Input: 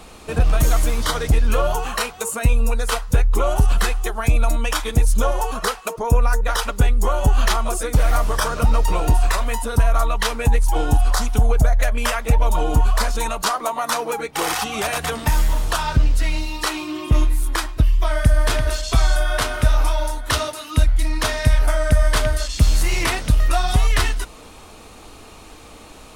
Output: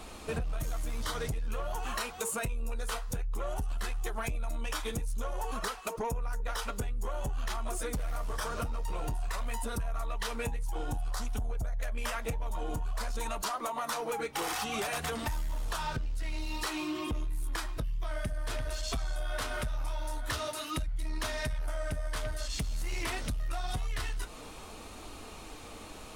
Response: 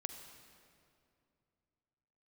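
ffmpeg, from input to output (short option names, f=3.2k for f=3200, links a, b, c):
-af "acompressor=threshold=-24dB:ratio=12,flanger=delay=3:depth=6.6:regen=-61:speed=0.52:shape=sinusoidal,asoftclip=type=tanh:threshold=-26.5dB"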